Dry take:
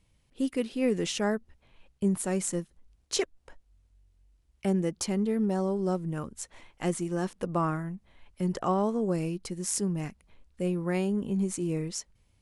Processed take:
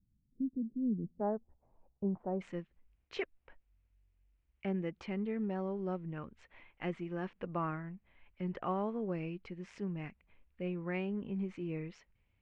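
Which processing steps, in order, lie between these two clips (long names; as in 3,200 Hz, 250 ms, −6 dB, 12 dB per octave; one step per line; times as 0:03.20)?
transistor ladder low-pass 270 Hz, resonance 45%, from 0:01.19 960 Hz, from 0:02.40 2,900 Hz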